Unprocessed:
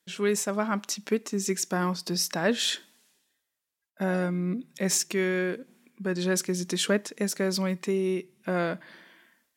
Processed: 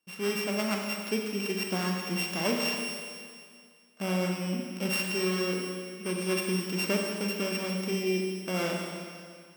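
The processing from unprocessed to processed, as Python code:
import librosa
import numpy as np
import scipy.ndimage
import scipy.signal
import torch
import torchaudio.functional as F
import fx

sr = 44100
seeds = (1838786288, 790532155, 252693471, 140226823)

y = np.r_[np.sort(x[:len(x) // 16 * 16].reshape(-1, 16), axis=1).ravel(), x[len(x) // 16 * 16:]]
y = fx.rev_schroeder(y, sr, rt60_s=2.1, comb_ms=29, drr_db=0.5)
y = fx.dmg_tone(y, sr, hz=8800.0, level_db=-39.0, at=(6.03, 6.6), fade=0.02)
y = y * librosa.db_to_amplitude(-5.0)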